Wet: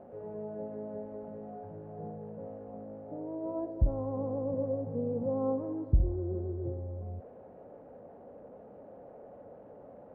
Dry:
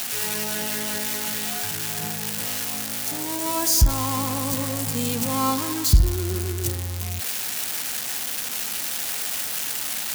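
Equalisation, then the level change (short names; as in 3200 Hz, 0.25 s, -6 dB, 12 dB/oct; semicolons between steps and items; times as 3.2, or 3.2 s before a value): ladder low-pass 610 Hz, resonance 65%; +1.5 dB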